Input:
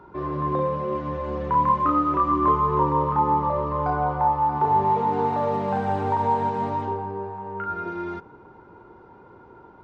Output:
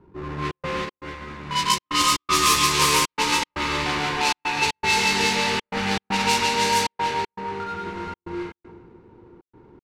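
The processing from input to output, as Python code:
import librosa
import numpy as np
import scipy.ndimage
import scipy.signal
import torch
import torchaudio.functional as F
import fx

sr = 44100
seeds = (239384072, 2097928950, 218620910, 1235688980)

y = fx.halfwave_hold(x, sr)
y = fx.peak_eq(y, sr, hz=630.0, db=-9.0, octaves=0.56)
y = fx.echo_feedback(y, sr, ms=147, feedback_pct=37, wet_db=-5)
y = fx.rev_gated(y, sr, seeds[0], gate_ms=430, shape='rising', drr_db=0.0)
y = fx.step_gate(y, sr, bpm=118, pattern='xxxx.xx.xx', floor_db=-60.0, edge_ms=4.5)
y = fx.env_lowpass(y, sr, base_hz=580.0, full_db=-9.5)
y = fx.high_shelf(y, sr, hz=2100.0, db=11.5)
y = fx.notch(y, sr, hz=3200.0, q=23.0)
y = fx.upward_expand(y, sr, threshold_db=-24.0, expansion=1.5, at=(0.84, 3.41), fade=0.02)
y = F.gain(torch.from_numpy(y), -7.0).numpy()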